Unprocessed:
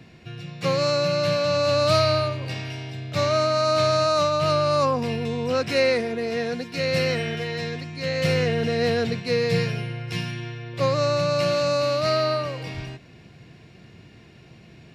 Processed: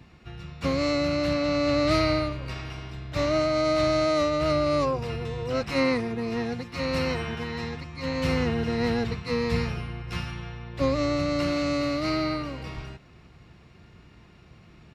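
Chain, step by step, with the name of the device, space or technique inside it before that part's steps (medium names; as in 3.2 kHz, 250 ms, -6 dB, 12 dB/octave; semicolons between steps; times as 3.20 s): 1.33–1.91 s: low-pass 8 kHz 12 dB/octave; octave pedal (harmony voices -12 st -1 dB); trim -6 dB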